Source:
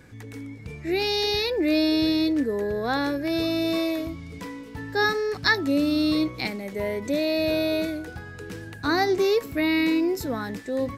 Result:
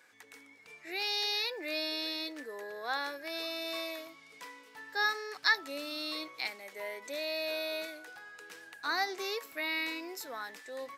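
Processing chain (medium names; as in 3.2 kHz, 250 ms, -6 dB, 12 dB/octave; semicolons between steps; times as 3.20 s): high-pass 830 Hz 12 dB/octave; trim -5.5 dB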